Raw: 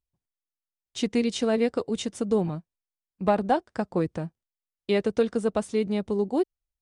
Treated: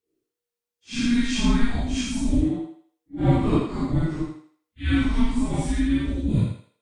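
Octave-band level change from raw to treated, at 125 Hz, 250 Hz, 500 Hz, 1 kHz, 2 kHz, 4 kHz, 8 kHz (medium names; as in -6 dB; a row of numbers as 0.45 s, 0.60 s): +11.5 dB, +5.0 dB, -8.5 dB, -4.0 dB, +4.5 dB, +4.5 dB, +5.0 dB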